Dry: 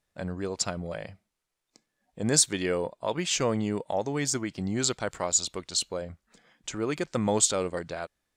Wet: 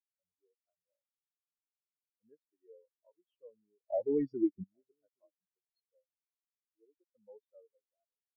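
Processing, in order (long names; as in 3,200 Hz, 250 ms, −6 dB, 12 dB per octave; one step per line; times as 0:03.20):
low-pass filter 3,900 Hz 24 dB per octave
parametric band 160 Hz −9.5 dB 1.7 octaves
0:03.87–0:04.64: leveller curve on the samples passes 5
single-tap delay 819 ms −14.5 dB
every bin expanded away from the loudest bin 4 to 1
level −5 dB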